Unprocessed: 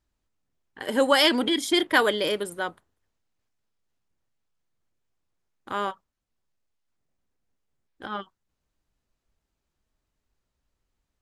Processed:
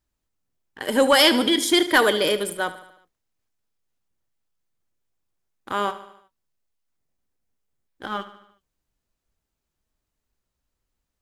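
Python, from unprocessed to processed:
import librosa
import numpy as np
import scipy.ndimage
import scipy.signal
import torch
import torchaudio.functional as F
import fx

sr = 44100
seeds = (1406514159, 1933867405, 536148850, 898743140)

p1 = fx.high_shelf(x, sr, hz=8300.0, db=7.5)
p2 = fx.leveller(p1, sr, passes=1)
y = p2 + fx.echo_feedback(p2, sr, ms=74, feedback_pct=55, wet_db=-14.5, dry=0)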